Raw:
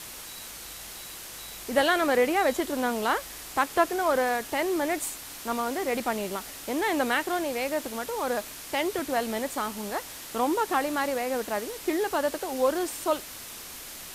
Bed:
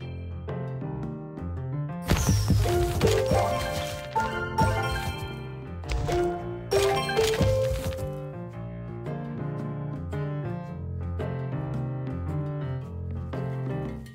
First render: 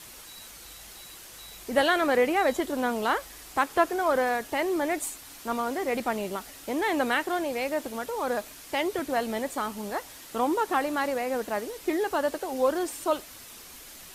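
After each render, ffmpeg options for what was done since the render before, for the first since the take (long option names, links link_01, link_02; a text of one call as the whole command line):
ffmpeg -i in.wav -af "afftdn=noise_reduction=6:noise_floor=-42" out.wav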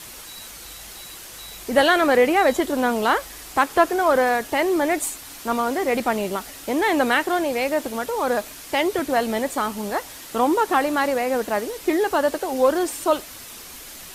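ffmpeg -i in.wav -af "acontrast=74" out.wav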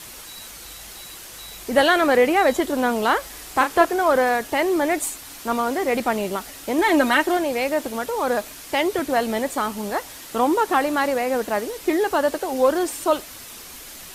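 ffmpeg -i in.wav -filter_complex "[0:a]asettb=1/sr,asplit=3[link_01][link_02][link_03];[link_01]atrim=end=3.214[link_04];[link_02]atrim=start=3.21:end=3.85,asetpts=PTS-STARTPTS,afade=type=in:duration=0.004:curve=qsin,afade=type=out:start_time=0.636:duration=0.004:curve=qsin,asplit=2[link_05][link_06];[link_06]adelay=35,volume=-7dB[link_07];[link_05][link_07]amix=inputs=2:normalize=0,atrim=end_sample=28224[link_08];[link_03]atrim=start=3.846[link_09];[link_04][link_08]acrossfade=duration=0.004:curve1=hsin:curve2=qsin[link_10];[link_10][link_09]acrossfade=duration=0.004:curve1=qsin:curve2=hsin,asettb=1/sr,asplit=3[link_11][link_12][link_13];[link_11]atrim=end=6.784[link_14];[link_12]atrim=start=6.78:end=7.37,asetpts=PTS-STARTPTS,afade=type=in:duration=0.004:curve=qsin,afade=type=out:start_time=0.586:duration=0.004:curve=qsin,aecho=1:1:3.2:0.65,atrim=end_sample=26019[link_15];[link_13]atrim=start=7.366[link_16];[link_14][link_15]acrossfade=duration=0.004:curve1=hsin:curve2=qsin[link_17];[link_17][link_16]acrossfade=duration=0.004:curve1=qsin:curve2=hsin" out.wav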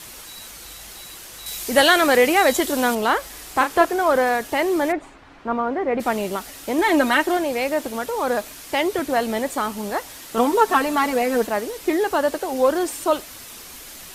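ffmpeg -i in.wav -filter_complex "[0:a]asettb=1/sr,asplit=3[link_01][link_02][link_03];[link_01]atrim=end=1.464[link_04];[link_02]atrim=start=1.46:end=2.95,asetpts=PTS-STARTPTS,afade=type=in:duration=0.004:curve=qsin,afade=type=out:start_time=1.486:duration=0.004:curve=qsin,highshelf=frequency=2600:gain=9.5[link_05];[link_03]atrim=start=2.946[link_06];[link_04][link_05]acrossfade=duration=0.004:curve1=hsin:curve2=qsin[link_07];[link_07][link_06]acrossfade=duration=0.004:curve1=qsin:curve2=hsin,asplit=3[link_08][link_09][link_10];[link_08]afade=type=out:start_time=4.91:duration=0.02[link_11];[link_09]lowpass=1700,afade=type=in:start_time=4.91:duration=0.02,afade=type=out:start_time=5.99:duration=0.02[link_12];[link_10]afade=type=in:start_time=5.99:duration=0.02[link_13];[link_11][link_12][link_13]amix=inputs=3:normalize=0,asettb=1/sr,asplit=3[link_14][link_15][link_16];[link_14]atrim=end=10.374[link_17];[link_15]atrim=start=10.37:end=11.47,asetpts=PTS-STARTPTS,afade=type=in:duration=0.004:curve=qsin,afade=type=out:start_time=1.096:duration=0.004:curve=qsin,aecho=1:1:4.5:0.87,atrim=end_sample=48510[link_18];[link_16]atrim=start=11.466[link_19];[link_17][link_18]acrossfade=duration=0.004:curve1=hsin:curve2=qsin[link_20];[link_20][link_19]acrossfade=duration=0.004:curve1=qsin:curve2=hsin" out.wav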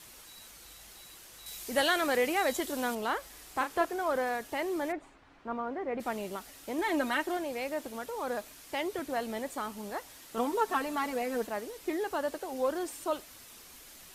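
ffmpeg -i in.wav -af "volume=-12.5dB" out.wav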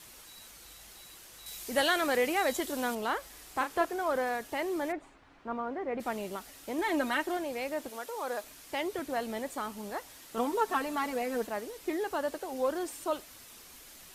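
ffmpeg -i in.wav -filter_complex "[0:a]asettb=1/sr,asplit=3[link_01][link_02][link_03];[link_01]atrim=end=7.894[link_04];[link_02]atrim=start=7.89:end=8.44,asetpts=PTS-STARTPTS,afade=type=in:duration=0.004:curve=qsin,afade=type=out:start_time=0.546:duration=0.004:curve=qsin,bass=frequency=250:gain=-14,treble=frequency=4000:gain=2[link_05];[link_03]atrim=start=8.436[link_06];[link_04][link_05]acrossfade=duration=0.004:curve1=hsin:curve2=qsin[link_07];[link_07][link_06]acrossfade=duration=0.004:curve1=qsin:curve2=hsin" out.wav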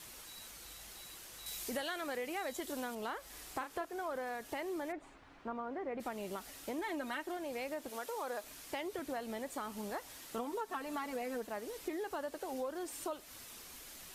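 ffmpeg -i in.wav -af "acompressor=threshold=-37dB:ratio=6" out.wav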